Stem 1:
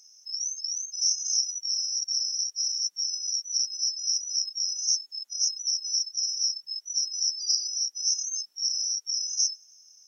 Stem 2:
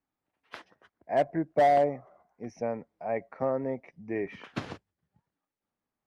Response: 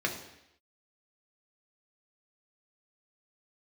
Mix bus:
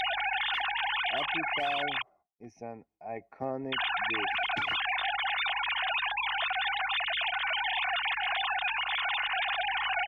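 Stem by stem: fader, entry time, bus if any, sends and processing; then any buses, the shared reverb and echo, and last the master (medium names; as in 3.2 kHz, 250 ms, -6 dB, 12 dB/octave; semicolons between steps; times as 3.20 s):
-0.5 dB, 0.00 s, muted 2.02–3.72 s, no send, formants replaced by sine waves; hum 50 Hz, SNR 33 dB
-4.5 dB, 0.00 s, no send, expander -54 dBFS; peaking EQ 930 Hz -7 dB 2.8 oct; small resonant body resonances 830/2500 Hz, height 10 dB, ringing for 25 ms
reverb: none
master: comb 2.8 ms, depth 36%; gain riding within 4 dB 0.5 s; peak limiter -22 dBFS, peak gain reduction 5 dB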